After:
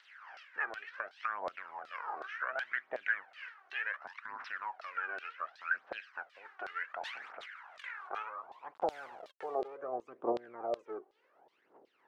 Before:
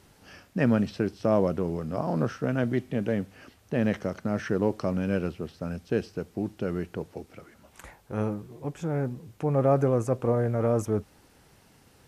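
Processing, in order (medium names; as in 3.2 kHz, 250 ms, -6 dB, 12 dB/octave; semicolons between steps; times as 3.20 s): spectral peaks clipped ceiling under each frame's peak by 15 dB; compression 4:1, threshold -33 dBFS, peak gain reduction 14 dB; 3.98–4.50 s: frequency shift -350 Hz; band-pass sweep 1.6 kHz -> 370 Hz, 7.77–9.97 s; 8.74–9.62 s: small samples zeroed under -54 dBFS; phaser 0.68 Hz, delay 2.8 ms, feedback 64%; LFO band-pass saw down 2.7 Hz 590–4100 Hz; 6.87–8.23 s: decay stretcher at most 37 dB/s; trim +12 dB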